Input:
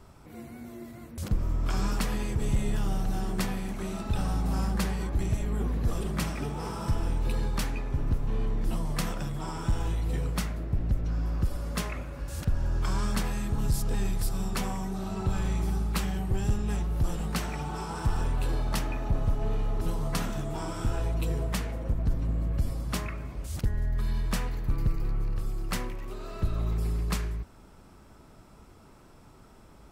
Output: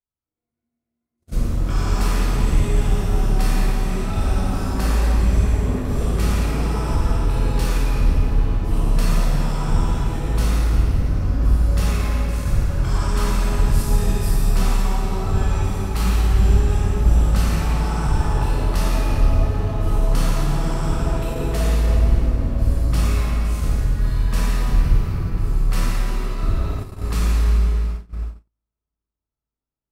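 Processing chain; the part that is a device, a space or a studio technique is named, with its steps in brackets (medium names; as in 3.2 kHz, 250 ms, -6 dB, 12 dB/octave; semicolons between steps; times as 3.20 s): tunnel (flutter echo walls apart 9.5 m, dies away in 0.44 s; reverberation RT60 3.5 s, pre-delay 11 ms, DRR -9 dB); gate -21 dBFS, range -49 dB; trim -2 dB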